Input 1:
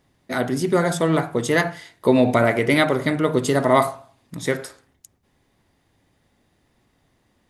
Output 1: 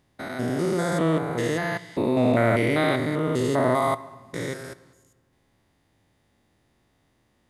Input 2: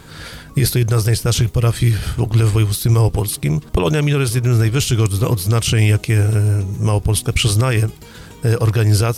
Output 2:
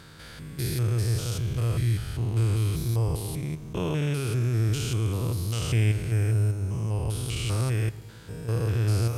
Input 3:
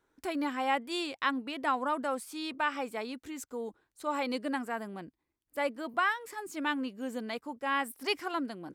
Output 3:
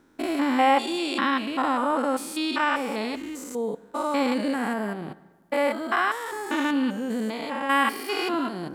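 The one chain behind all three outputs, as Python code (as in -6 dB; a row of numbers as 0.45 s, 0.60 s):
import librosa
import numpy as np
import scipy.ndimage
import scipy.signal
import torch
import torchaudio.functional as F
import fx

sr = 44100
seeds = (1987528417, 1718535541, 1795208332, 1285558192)

y = fx.spec_steps(x, sr, hold_ms=200)
y = fx.rev_fdn(y, sr, rt60_s=1.5, lf_ratio=1.05, hf_ratio=0.65, size_ms=52.0, drr_db=16.0)
y = y * 10.0 ** (-26 / 20.0) / np.sqrt(np.mean(np.square(y)))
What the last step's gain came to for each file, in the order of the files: -1.0 dB, -10.0 dB, +12.5 dB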